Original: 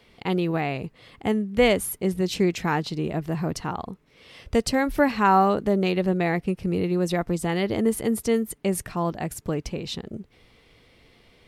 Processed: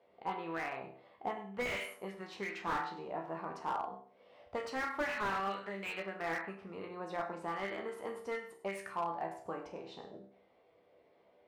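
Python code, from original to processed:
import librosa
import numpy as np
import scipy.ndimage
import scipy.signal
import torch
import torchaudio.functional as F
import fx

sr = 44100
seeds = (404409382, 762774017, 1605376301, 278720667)

p1 = fx.resonator_bank(x, sr, root=36, chord='major', decay_s=0.49)
p2 = fx.auto_wah(p1, sr, base_hz=620.0, top_hz=2300.0, q=2.4, full_db=-28.0, direction='up')
p3 = p2 + fx.echo_single(p2, sr, ms=100, db=-14.0, dry=0)
p4 = fx.slew_limit(p3, sr, full_power_hz=7.0)
y = F.gain(torch.from_numpy(p4), 12.5).numpy()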